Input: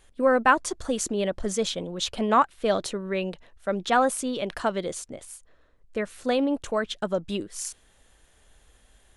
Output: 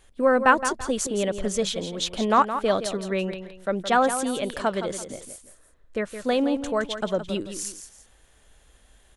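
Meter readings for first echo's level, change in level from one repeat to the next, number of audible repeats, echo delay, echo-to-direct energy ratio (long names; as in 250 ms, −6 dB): −10.0 dB, −9.5 dB, 2, 168 ms, −9.5 dB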